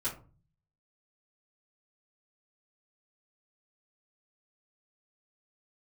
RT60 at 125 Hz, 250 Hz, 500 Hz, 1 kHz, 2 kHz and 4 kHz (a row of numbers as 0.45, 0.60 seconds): 0.85, 0.60, 0.40, 0.35, 0.25, 0.20 seconds